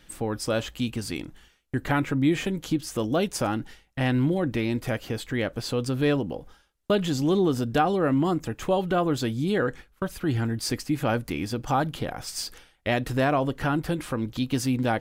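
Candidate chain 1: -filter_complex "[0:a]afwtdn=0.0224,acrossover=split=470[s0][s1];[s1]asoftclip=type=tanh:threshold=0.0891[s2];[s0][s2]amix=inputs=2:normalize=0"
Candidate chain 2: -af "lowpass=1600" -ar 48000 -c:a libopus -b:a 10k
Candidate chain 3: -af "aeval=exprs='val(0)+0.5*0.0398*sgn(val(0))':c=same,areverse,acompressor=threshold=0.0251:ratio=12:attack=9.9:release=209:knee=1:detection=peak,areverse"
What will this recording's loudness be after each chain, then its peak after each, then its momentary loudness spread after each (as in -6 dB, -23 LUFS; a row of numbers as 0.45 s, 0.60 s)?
-27.5 LUFS, -27.5 LUFS, -35.0 LUFS; -12.5 dBFS, -11.0 dBFS, -23.5 dBFS; 10 LU, 10 LU, 2 LU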